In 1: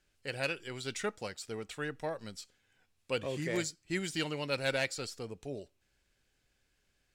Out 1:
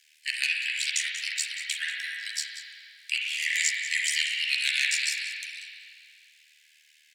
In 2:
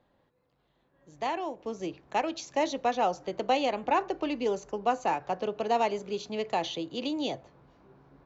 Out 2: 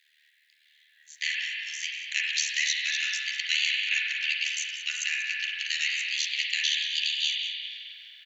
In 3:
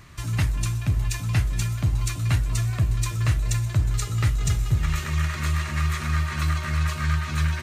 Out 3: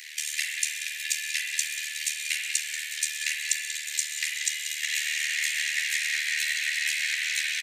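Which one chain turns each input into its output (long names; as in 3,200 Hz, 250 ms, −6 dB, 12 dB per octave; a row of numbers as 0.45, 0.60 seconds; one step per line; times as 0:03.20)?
Butterworth high-pass 1,800 Hz 72 dB per octave
dynamic equaliser 7,600 Hz, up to +5 dB, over −51 dBFS, Q 1.1
downward compressor 2 to 1, threshold −48 dBFS
amplitude modulation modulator 76 Hz, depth 85%
slap from a distant wall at 32 metres, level −10 dB
spring reverb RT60 2.3 s, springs 39/43 ms, chirp 25 ms, DRR −1.5 dB
loudness normalisation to −27 LKFS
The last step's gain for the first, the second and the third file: +21.0, +21.0, +17.5 decibels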